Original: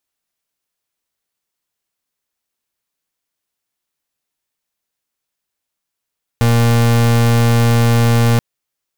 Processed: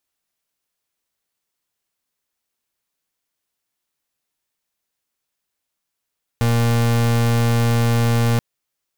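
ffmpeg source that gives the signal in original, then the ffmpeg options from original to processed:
-f lavfi -i "aevalsrc='0.266*(2*lt(mod(117*t,1),0.36)-1)':d=1.98:s=44100"
-af "volume=6.68,asoftclip=hard,volume=0.15"

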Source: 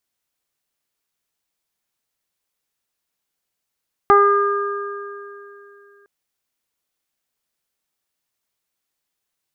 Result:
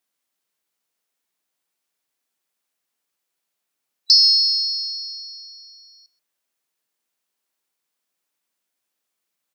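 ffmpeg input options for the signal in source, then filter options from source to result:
-f lavfi -i "aevalsrc='0.237*pow(10,-3*t/3)*sin(2*PI*404*t)+0.224*pow(10,-3*t/0.39)*sin(2*PI*808*t)+0.335*pow(10,-3*t/2.36)*sin(2*PI*1212*t)+0.0631*pow(10,-3*t/3.76)*sin(2*PI*1616*t)+0.0266*pow(10,-3*t/0.85)*sin(2*PI*2020*t)':d=1.96:s=44100"
-filter_complex "[0:a]afftfilt=real='real(if(lt(b,736),b+184*(1-2*mod(floor(b/184),2)),b),0)':imag='imag(if(lt(b,736),b+184*(1-2*mod(floor(b/184),2)),b),0)':win_size=2048:overlap=0.75,highpass=180,asplit=2[s0][s1];[s1]adelay=130,highpass=300,lowpass=3400,asoftclip=type=hard:threshold=0.266,volume=0.224[s2];[s0][s2]amix=inputs=2:normalize=0"

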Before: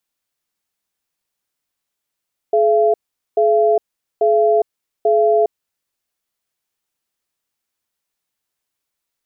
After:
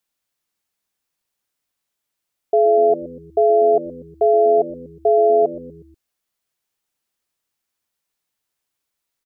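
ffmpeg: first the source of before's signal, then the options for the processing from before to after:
-f lavfi -i "aevalsrc='0.211*(sin(2*PI*426*t)+sin(2*PI*679*t))*clip(min(mod(t,0.84),0.41-mod(t,0.84))/0.005,0,1)':d=2.93:s=44100"
-filter_complex "[0:a]asplit=5[s0][s1][s2][s3][s4];[s1]adelay=121,afreqshift=-88,volume=0.141[s5];[s2]adelay=242,afreqshift=-176,volume=0.0724[s6];[s3]adelay=363,afreqshift=-264,volume=0.0367[s7];[s4]adelay=484,afreqshift=-352,volume=0.0188[s8];[s0][s5][s6][s7][s8]amix=inputs=5:normalize=0"

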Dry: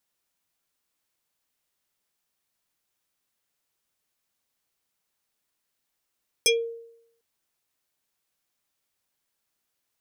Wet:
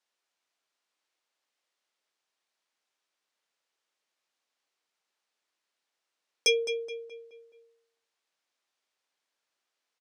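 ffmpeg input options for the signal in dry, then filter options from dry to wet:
-f lavfi -i "aevalsrc='0.188*pow(10,-3*t/0.76)*sin(2*PI*462*t+3.8*pow(10,-3*t/0.2)*sin(2*PI*6.17*462*t))':d=0.75:s=44100"
-filter_complex "[0:a]highpass=380,lowpass=5900,asplit=2[s0][s1];[s1]adelay=212,lowpass=f=3200:p=1,volume=0.355,asplit=2[s2][s3];[s3]adelay=212,lowpass=f=3200:p=1,volume=0.47,asplit=2[s4][s5];[s5]adelay=212,lowpass=f=3200:p=1,volume=0.47,asplit=2[s6][s7];[s7]adelay=212,lowpass=f=3200:p=1,volume=0.47,asplit=2[s8][s9];[s9]adelay=212,lowpass=f=3200:p=1,volume=0.47[s10];[s2][s4][s6][s8][s10]amix=inputs=5:normalize=0[s11];[s0][s11]amix=inputs=2:normalize=0"

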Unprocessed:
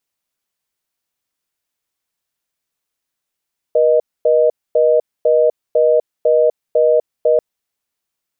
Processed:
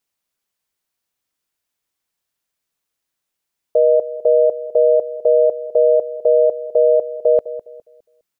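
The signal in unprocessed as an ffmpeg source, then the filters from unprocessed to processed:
-f lavfi -i "aevalsrc='0.251*(sin(2*PI*480*t)+sin(2*PI*620*t))*clip(min(mod(t,0.5),0.25-mod(t,0.5))/0.005,0,1)':d=3.64:s=44100"
-filter_complex "[0:a]asplit=2[s0][s1];[s1]adelay=205,lowpass=f=820:p=1,volume=0.224,asplit=2[s2][s3];[s3]adelay=205,lowpass=f=820:p=1,volume=0.36,asplit=2[s4][s5];[s5]adelay=205,lowpass=f=820:p=1,volume=0.36,asplit=2[s6][s7];[s7]adelay=205,lowpass=f=820:p=1,volume=0.36[s8];[s0][s2][s4][s6][s8]amix=inputs=5:normalize=0"

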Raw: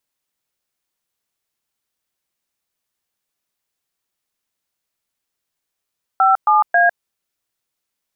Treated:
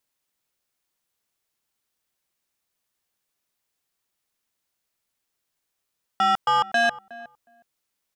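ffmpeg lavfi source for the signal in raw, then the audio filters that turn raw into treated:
-f lavfi -i "aevalsrc='0.237*clip(min(mod(t,0.271),0.153-mod(t,0.271))/0.002,0,1)*(eq(floor(t/0.271),0)*(sin(2*PI*770*mod(t,0.271))+sin(2*PI*1336*mod(t,0.271)))+eq(floor(t/0.271),1)*(sin(2*PI*852*mod(t,0.271))+sin(2*PI*1209*mod(t,0.271)))+eq(floor(t/0.271),2)*(sin(2*PI*697*mod(t,0.271))+sin(2*PI*1633*mod(t,0.271))))':d=0.813:s=44100"
-filter_complex "[0:a]asoftclip=type=tanh:threshold=0.141,asplit=2[s0][s1];[s1]adelay=364,lowpass=f=1100:p=1,volume=0.15,asplit=2[s2][s3];[s3]adelay=364,lowpass=f=1100:p=1,volume=0.16[s4];[s0][s2][s4]amix=inputs=3:normalize=0"

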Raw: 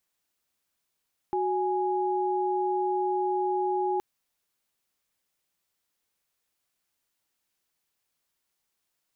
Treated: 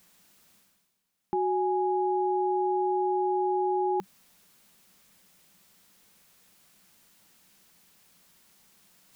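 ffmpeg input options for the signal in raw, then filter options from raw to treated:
-f lavfi -i "aevalsrc='0.0447*(sin(2*PI*369.99*t)+sin(2*PI*830.61*t))':d=2.67:s=44100"
-af "equalizer=f=190:t=o:w=0.48:g=13,areverse,acompressor=mode=upward:threshold=0.00562:ratio=2.5,areverse"

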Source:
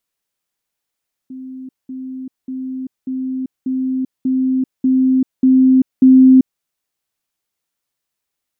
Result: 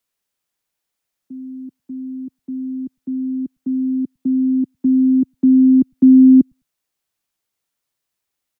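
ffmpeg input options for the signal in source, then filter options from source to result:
-f lavfi -i "aevalsrc='pow(10,(-28+3*floor(t/0.59))/20)*sin(2*PI*260*t)*clip(min(mod(t,0.59),0.39-mod(t,0.59))/0.005,0,1)':d=5.31:s=44100"
-filter_complex "[0:a]acrossover=split=100|140|170[s0][s1][s2][s3];[s0]aecho=1:1:102|204:0.251|0.0377[s4];[s4][s1][s2][s3]amix=inputs=4:normalize=0"

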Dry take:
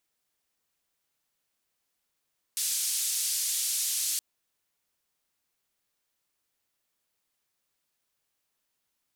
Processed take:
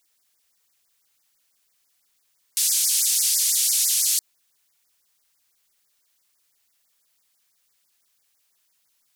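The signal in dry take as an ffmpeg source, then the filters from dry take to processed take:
-f lavfi -i "anoisesrc=c=white:d=1.62:r=44100:seed=1,highpass=f=4800,lowpass=f=11000,volume=-19.1dB"
-filter_complex "[0:a]tiltshelf=f=1300:g=-5,asplit=2[s0][s1];[s1]alimiter=limit=0.0708:level=0:latency=1:release=24,volume=1.26[s2];[s0][s2]amix=inputs=2:normalize=0,afftfilt=real='re*(1-between(b*sr/1024,200*pow(3400/200,0.5+0.5*sin(2*PI*6*pts/sr))/1.41,200*pow(3400/200,0.5+0.5*sin(2*PI*6*pts/sr))*1.41))':imag='im*(1-between(b*sr/1024,200*pow(3400/200,0.5+0.5*sin(2*PI*6*pts/sr))/1.41,200*pow(3400/200,0.5+0.5*sin(2*PI*6*pts/sr))*1.41))':win_size=1024:overlap=0.75"

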